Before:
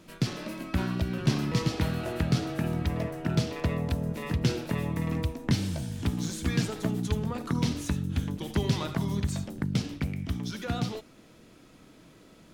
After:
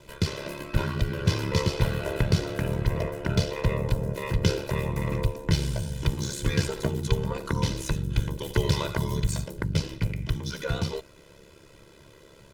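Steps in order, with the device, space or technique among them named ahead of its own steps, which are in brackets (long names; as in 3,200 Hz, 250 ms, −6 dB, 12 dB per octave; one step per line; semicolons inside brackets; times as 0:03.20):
ring-modulated robot voice (ring modulation 35 Hz; comb filter 2 ms, depth 72%)
0:08.26–0:09.52: high-shelf EQ 9,400 Hz +6 dB
level +4.5 dB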